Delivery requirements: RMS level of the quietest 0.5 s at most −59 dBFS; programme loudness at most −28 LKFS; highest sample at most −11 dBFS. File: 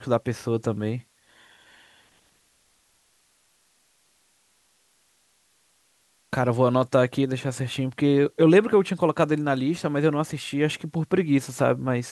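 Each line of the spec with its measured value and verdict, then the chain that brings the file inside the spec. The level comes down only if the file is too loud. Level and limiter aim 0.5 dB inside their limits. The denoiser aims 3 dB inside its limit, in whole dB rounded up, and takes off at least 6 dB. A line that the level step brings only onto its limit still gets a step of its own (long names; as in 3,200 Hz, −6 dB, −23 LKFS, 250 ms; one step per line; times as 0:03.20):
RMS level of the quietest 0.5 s −65 dBFS: in spec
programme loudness −23.5 LKFS: out of spec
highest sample −6.5 dBFS: out of spec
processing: level −5 dB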